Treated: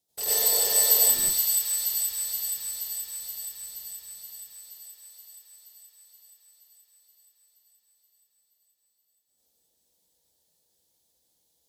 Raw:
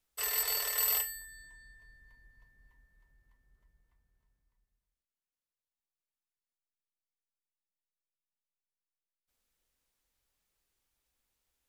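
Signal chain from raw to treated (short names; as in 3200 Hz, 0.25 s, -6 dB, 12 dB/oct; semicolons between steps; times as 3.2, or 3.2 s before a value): HPF 120 Hz 12 dB/oct; band shelf 1700 Hz -14 dB; in parallel at -4 dB: Schmitt trigger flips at -42 dBFS; on the sum: thin delay 0.475 s, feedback 70%, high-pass 1500 Hz, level -5 dB; reverb RT60 0.30 s, pre-delay 82 ms, DRR -7 dB; gain +2.5 dB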